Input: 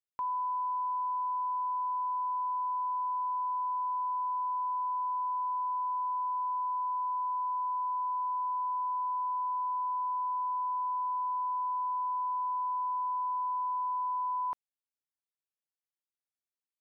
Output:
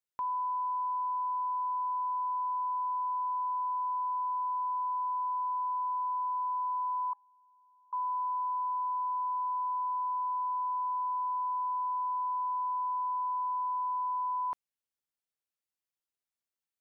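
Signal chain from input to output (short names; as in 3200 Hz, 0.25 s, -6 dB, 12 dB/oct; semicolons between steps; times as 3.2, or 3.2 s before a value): 7.13–7.93 resonator 830 Hz, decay 0.27 s, mix 100%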